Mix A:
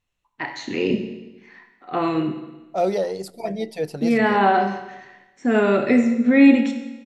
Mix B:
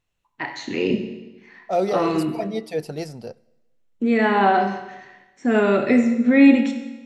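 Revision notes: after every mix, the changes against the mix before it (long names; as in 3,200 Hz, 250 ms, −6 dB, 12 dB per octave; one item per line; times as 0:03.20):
second voice: entry −1.05 s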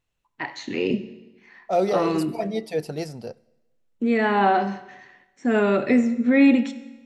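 first voice: send −8.0 dB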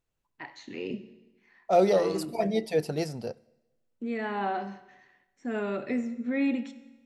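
first voice −11.5 dB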